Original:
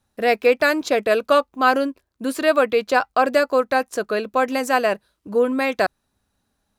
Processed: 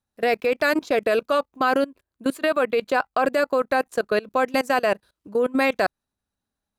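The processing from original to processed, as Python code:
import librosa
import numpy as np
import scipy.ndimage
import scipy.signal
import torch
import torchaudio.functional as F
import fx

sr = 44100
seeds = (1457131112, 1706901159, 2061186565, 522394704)

y = fx.peak_eq(x, sr, hz=5400.0, db=-6.5, octaves=0.38, at=(1.7, 3.97))
y = fx.level_steps(y, sr, step_db=22)
y = F.gain(torch.from_numpy(y), 3.0).numpy()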